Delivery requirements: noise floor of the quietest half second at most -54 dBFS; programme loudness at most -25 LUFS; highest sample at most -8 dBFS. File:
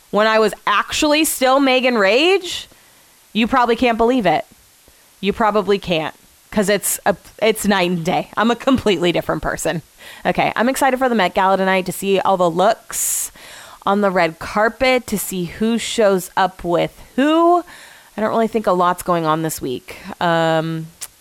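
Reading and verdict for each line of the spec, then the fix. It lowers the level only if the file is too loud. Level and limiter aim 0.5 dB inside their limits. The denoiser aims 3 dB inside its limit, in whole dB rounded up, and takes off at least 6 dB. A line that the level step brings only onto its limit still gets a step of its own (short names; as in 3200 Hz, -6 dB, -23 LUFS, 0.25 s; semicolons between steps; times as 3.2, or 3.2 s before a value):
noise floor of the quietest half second -50 dBFS: fail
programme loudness -17.0 LUFS: fail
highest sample -5.0 dBFS: fail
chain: gain -8.5 dB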